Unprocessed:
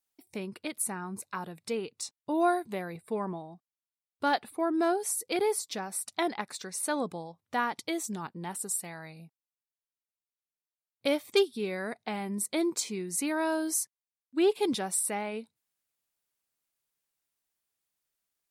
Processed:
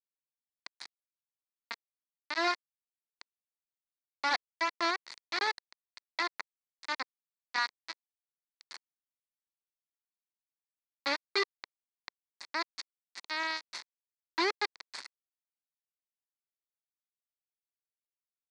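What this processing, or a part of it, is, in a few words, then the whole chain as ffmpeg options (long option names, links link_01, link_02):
hand-held game console: -af "acrusher=bits=3:mix=0:aa=0.000001,highpass=410,equalizer=frequency=470:width_type=q:width=4:gain=-9,equalizer=frequency=690:width_type=q:width=4:gain=-4,equalizer=frequency=1000:width_type=q:width=4:gain=4,equalizer=frequency=2000:width_type=q:width=4:gain=7,equalizer=frequency=3000:width_type=q:width=4:gain=-9,equalizer=frequency=4400:width_type=q:width=4:gain=9,lowpass=frequency=5000:width=0.5412,lowpass=frequency=5000:width=1.3066,volume=-4.5dB"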